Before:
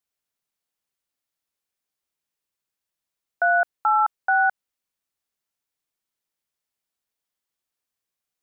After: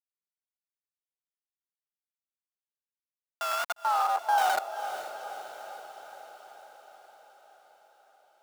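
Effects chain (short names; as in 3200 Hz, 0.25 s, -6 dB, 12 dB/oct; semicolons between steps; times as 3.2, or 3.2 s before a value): wow and flutter 140 cents; on a send at -5 dB: reverb RT60 0.25 s, pre-delay 82 ms; on the sum: Schmitt trigger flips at -21 dBFS; 3.76–4.38 Chebyshev band-pass 390–1600 Hz, order 5; in parallel at -11 dB: wrapped overs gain 29 dB; on the sum: diffused feedback echo 0.478 s, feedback 63%, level -10 dB; high-pass sweep 1100 Hz -> 550 Hz, 3.64–5.09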